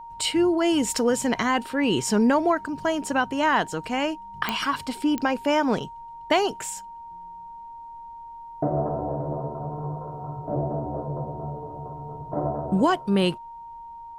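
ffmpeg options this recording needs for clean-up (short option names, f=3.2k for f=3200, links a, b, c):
-af "adeclick=t=4,bandreject=f=930:w=30,agate=range=-21dB:threshold=-33dB"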